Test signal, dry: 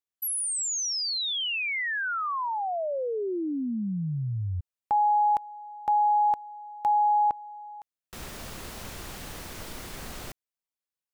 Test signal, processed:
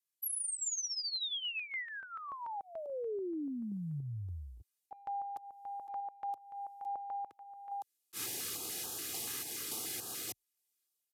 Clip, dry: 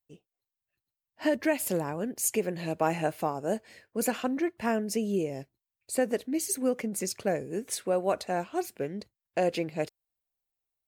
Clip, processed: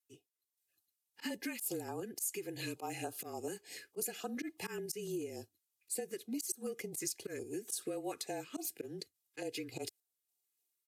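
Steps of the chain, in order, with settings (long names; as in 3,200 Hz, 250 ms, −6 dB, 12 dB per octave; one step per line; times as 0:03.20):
high-shelf EQ 4,300 Hz −4 dB
downsampling to 32,000 Hz
sample-and-hold tremolo
comb filter 2.4 ms, depth 62%
frequency shifter −33 Hz
first-order pre-emphasis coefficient 0.8
automatic gain control gain up to 7 dB
volume swells 113 ms
high-pass filter 110 Hz 24 dB per octave
downward compressor 6 to 1, threshold −44 dBFS
notch on a step sequencer 6.9 Hz 650–2,100 Hz
level +7.5 dB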